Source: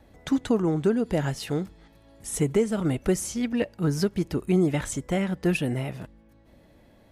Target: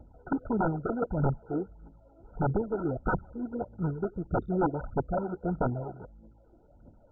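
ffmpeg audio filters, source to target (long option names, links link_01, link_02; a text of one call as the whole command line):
ffmpeg -i in.wav -af "aphaser=in_gain=1:out_gain=1:delay=3.1:decay=0.74:speed=1.6:type=triangular,aeval=exprs='(mod(4.73*val(0)+1,2)-1)/4.73':channel_layout=same,volume=-5.5dB" -ar 16000 -c:a mp2 -b:a 8k out.mp2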